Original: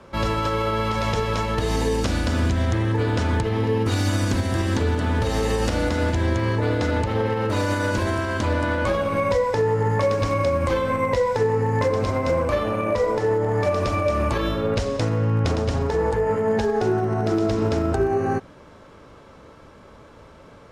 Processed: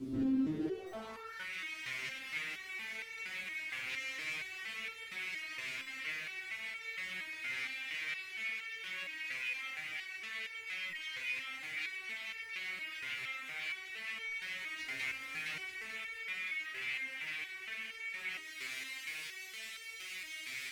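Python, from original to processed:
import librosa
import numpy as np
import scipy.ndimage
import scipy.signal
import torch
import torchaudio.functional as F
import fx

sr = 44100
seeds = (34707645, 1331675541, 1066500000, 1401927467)

p1 = fx.high_shelf(x, sr, hz=6800.0, db=-6.5)
p2 = fx.notch(p1, sr, hz=3700.0, q=12.0)
p3 = p2 + 0.86 * np.pad(p2, (int(2.9 * sr / 1000.0), 0))[:len(p2)]
p4 = fx.quant_dither(p3, sr, seeds[0], bits=6, dither='triangular')
p5 = fx.hum_notches(p4, sr, base_hz=50, count=8)
p6 = fx.fold_sine(p5, sr, drive_db=17, ceiling_db=-7.5)
p7 = p6 + fx.echo_diffused(p6, sr, ms=516, feedback_pct=67, wet_db=-16, dry=0)
p8 = fx.filter_sweep_bandpass(p7, sr, from_hz=280.0, to_hz=2200.0, start_s=0.52, end_s=1.51, q=4.7)
p9 = fx.rider(p8, sr, range_db=5, speed_s=0.5)
p10 = fx.tone_stack(p9, sr, knobs='10-0-1')
p11 = fx.buffer_glitch(p10, sr, at_s=(0.86, 5.81, 10.89, 14.25), block=256, repeats=9)
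p12 = fx.resonator_held(p11, sr, hz=4.3, low_hz=130.0, high_hz=450.0)
y = F.gain(torch.from_numpy(p12), 17.5).numpy()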